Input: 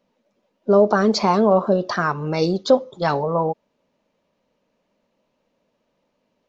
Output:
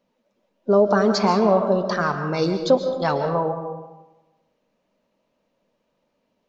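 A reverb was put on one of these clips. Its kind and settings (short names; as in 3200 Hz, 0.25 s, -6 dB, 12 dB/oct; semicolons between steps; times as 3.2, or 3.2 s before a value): digital reverb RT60 1.1 s, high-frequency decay 0.55×, pre-delay 95 ms, DRR 7 dB; gain -2 dB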